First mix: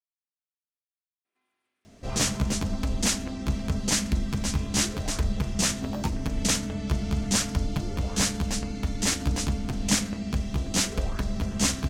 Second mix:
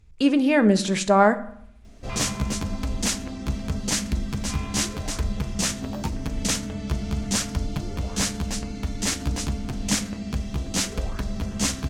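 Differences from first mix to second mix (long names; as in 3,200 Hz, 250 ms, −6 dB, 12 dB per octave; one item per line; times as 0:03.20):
speech: unmuted
first sound +11.0 dB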